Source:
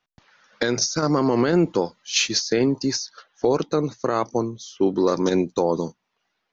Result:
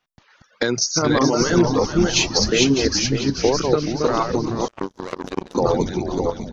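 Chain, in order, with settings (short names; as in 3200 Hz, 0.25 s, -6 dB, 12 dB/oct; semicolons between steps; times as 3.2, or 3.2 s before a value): regenerating reverse delay 0.3 s, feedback 52%, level -1 dB; reverb removal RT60 1.8 s; on a send: frequency-shifting echo 0.428 s, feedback 49%, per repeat -140 Hz, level -8.5 dB; 4.68–5.55 on the sum: power-law curve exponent 3; gain +2 dB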